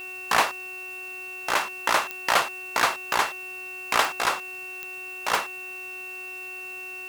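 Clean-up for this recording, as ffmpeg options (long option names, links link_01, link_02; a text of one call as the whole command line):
ffmpeg -i in.wav -af "adeclick=threshold=4,bandreject=frequency=369.8:width_type=h:width=4,bandreject=frequency=739.6:width_type=h:width=4,bandreject=frequency=1109.4:width_type=h:width=4,bandreject=frequency=1479.2:width_type=h:width=4,bandreject=frequency=1849:width_type=h:width=4,bandreject=frequency=2218.8:width_type=h:width=4,bandreject=frequency=2700:width=30,afwtdn=0.0025" out.wav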